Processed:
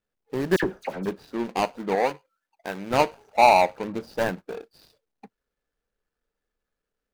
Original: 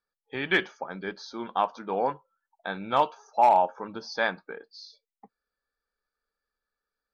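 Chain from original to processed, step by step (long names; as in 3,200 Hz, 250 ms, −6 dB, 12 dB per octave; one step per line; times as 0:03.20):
running median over 41 samples
0:00.56–0:01.06: all-pass dispersion lows, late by 67 ms, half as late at 2,000 Hz
0:01.95–0:02.91: low-shelf EQ 300 Hz −11 dB
level +9 dB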